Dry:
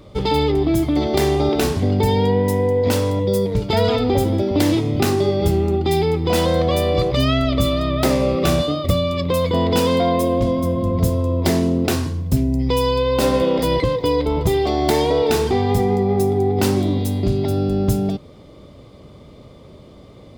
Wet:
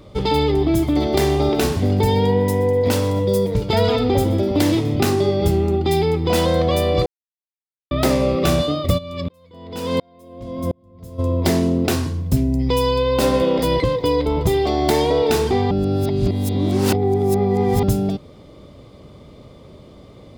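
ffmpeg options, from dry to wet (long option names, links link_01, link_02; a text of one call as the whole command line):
ffmpeg -i in.wav -filter_complex "[0:a]asplit=3[link_01][link_02][link_03];[link_01]afade=type=out:start_time=0.48:duration=0.02[link_04];[link_02]aecho=1:1:124|248|372|496|620:0.119|0.0701|0.0414|0.0244|0.0144,afade=type=in:start_time=0.48:duration=0.02,afade=type=out:start_time=4.94:duration=0.02[link_05];[link_03]afade=type=in:start_time=4.94:duration=0.02[link_06];[link_04][link_05][link_06]amix=inputs=3:normalize=0,asplit=3[link_07][link_08][link_09];[link_07]afade=type=out:start_time=8.97:duration=0.02[link_10];[link_08]aeval=exprs='val(0)*pow(10,-39*if(lt(mod(-1.4*n/s,1),2*abs(-1.4)/1000),1-mod(-1.4*n/s,1)/(2*abs(-1.4)/1000),(mod(-1.4*n/s,1)-2*abs(-1.4)/1000)/(1-2*abs(-1.4)/1000))/20)':channel_layout=same,afade=type=in:start_time=8.97:duration=0.02,afade=type=out:start_time=11.18:duration=0.02[link_11];[link_09]afade=type=in:start_time=11.18:duration=0.02[link_12];[link_10][link_11][link_12]amix=inputs=3:normalize=0,asplit=5[link_13][link_14][link_15][link_16][link_17];[link_13]atrim=end=7.06,asetpts=PTS-STARTPTS,afade=type=out:start_time=7.056:duration=0.004:curve=hsin[link_18];[link_14]atrim=start=7.06:end=7.91,asetpts=PTS-STARTPTS,volume=0[link_19];[link_15]atrim=start=7.91:end=15.712,asetpts=PTS-STARTPTS,afade=type=in:duration=0.004:curve=hsin[link_20];[link_16]atrim=start=15.708:end=17.832,asetpts=PTS-STARTPTS,areverse[link_21];[link_17]atrim=start=17.828[link_22];[link_18][link_19][link_20]concat=n=3:v=0:a=1[link_23];[link_23][link_21]acrossfade=duration=0.004:curve1=hsin:curve2=hsin[link_24];[link_24][link_22]acrossfade=duration=0.004:curve1=hsin:curve2=hsin" out.wav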